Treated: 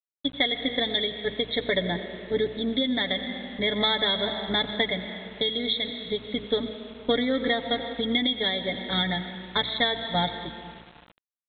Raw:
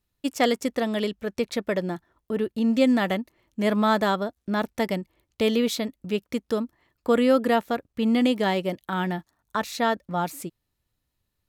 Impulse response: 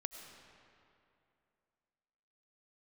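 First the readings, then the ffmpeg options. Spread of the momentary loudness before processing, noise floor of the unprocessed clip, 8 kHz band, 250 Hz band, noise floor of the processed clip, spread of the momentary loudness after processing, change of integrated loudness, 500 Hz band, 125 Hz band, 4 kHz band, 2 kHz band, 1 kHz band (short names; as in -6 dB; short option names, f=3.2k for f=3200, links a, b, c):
11 LU, -79 dBFS, under -40 dB, -6.0 dB, -85 dBFS, 8 LU, -1.0 dB, -3.5 dB, -2.5 dB, +10.5 dB, +2.0 dB, -5.0 dB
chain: -filter_complex "[0:a]aeval=exprs='if(lt(val(0),0),0.708*val(0),val(0))':c=same,aeval=exprs='val(0)+0.01*(sin(2*PI*60*n/s)+sin(2*PI*2*60*n/s)/2+sin(2*PI*3*60*n/s)/3+sin(2*PI*4*60*n/s)/4+sin(2*PI*5*60*n/s)/5)':c=same,agate=range=-33dB:threshold=-28dB:ratio=3:detection=peak,aecho=1:1:86:0.112,adynamicequalizer=threshold=0.00891:dfrequency=110:dqfactor=0.9:tfrequency=110:tqfactor=0.9:attack=5:release=100:ratio=0.375:range=2:mode=cutabove:tftype=bell,highpass=f=49:p=1,highshelf=f=1.9k:t=q:w=3:g=13.5,dynaudnorm=f=110:g=11:m=7dB,asplit=2[a][b];[1:a]atrim=start_sample=2205,adelay=7[c];[b][c]afir=irnorm=-1:irlink=0,volume=-2dB[d];[a][d]amix=inputs=2:normalize=0,acompressor=threshold=-18dB:ratio=6,asuperstop=centerf=2700:order=20:qfactor=2.6,aresample=8000,aeval=exprs='val(0)*gte(abs(val(0)),0.00631)':c=same,aresample=44100"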